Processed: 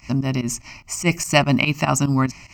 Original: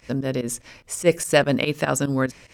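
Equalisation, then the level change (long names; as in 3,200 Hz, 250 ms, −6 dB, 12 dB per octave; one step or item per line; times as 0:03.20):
phaser with its sweep stopped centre 2,400 Hz, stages 8
+7.5 dB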